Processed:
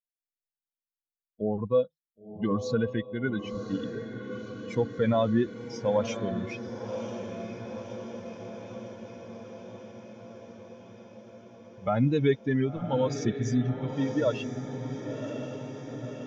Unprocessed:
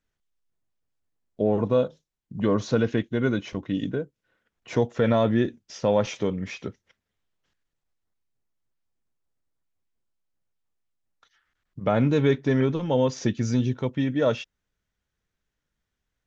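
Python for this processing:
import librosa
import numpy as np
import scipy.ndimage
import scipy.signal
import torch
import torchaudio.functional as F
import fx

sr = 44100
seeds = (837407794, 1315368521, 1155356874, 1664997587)

y = fx.bin_expand(x, sr, power=2.0)
y = fx.echo_diffused(y, sr, ms=1041, feedback_pct=69, wet_db=-9.0)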